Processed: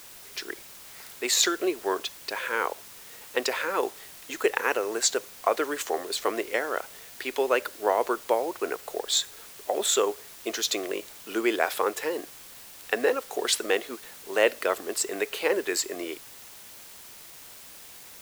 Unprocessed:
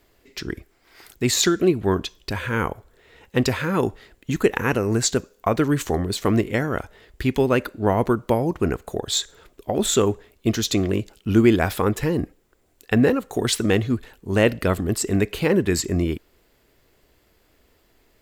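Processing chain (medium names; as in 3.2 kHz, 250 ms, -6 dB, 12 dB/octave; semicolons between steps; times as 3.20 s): high-pass 430 Hz 24 dB/octave; in parallel at -5 dB: word length cut 6-bit, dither triangular; on the sum: trim -5.5 dB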